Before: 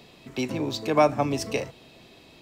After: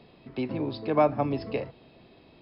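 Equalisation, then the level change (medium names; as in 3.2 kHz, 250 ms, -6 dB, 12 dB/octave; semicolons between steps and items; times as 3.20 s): brick-wall FIR low-pass 5.3 kHz; treble shelf 2.1 kHz -10.5 dB; -1.5 dB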